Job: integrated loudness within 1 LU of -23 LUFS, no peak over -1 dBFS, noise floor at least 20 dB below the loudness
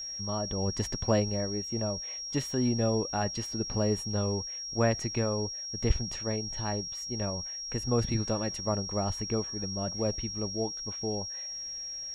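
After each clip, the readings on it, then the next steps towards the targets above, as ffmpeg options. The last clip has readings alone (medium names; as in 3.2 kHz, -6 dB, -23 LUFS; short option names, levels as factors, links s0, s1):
steady tone 5.6 kHz; tone level -36 dBFS; loudness -31.0 LUFS; peak level -12.5 dBFS; loudness target -23.0 LUFS
-> -af "bandreject=f=5600:w=30"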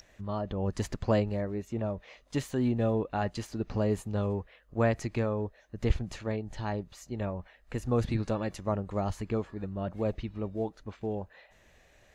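steady tone not found; loudness -33.0 LUFS; peak level -13.0 dBFS; loudness target -23.0 LUFS
-> -af "volume=3.16"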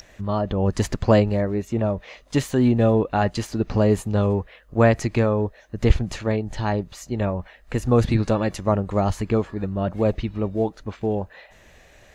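loudness -23.0 LUFS; peak level -3.0 dBFS; noise floor -52 dBFS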